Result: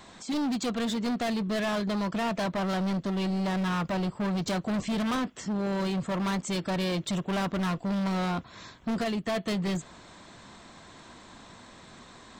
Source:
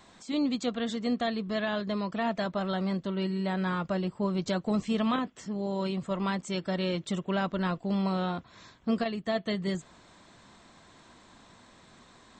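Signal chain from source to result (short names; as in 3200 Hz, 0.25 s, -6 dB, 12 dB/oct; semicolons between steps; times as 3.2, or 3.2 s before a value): hard clip -32.5 dBFS, distortion -8 dB; gain +6 dB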